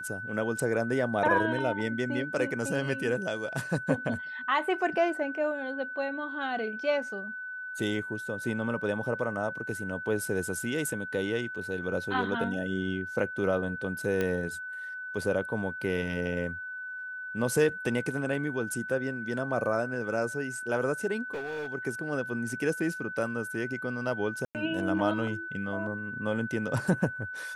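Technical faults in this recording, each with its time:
whine 1.5 kHz -36 dBFS
14.21 s: pop -16 dBFS
21.33–21.74 s: clipped -31.5 dBFS
24.45–24.55 s: dropout 98 ms

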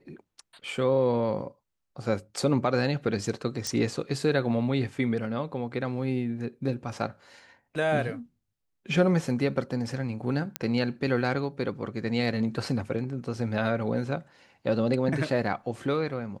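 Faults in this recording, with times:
3.67 s: pop
10.56 s: pop -11 dBFS

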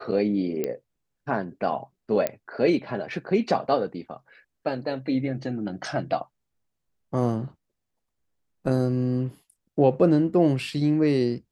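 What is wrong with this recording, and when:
0.64 s: pop -14 dBFS
2.27 s: pop -11 dBFS

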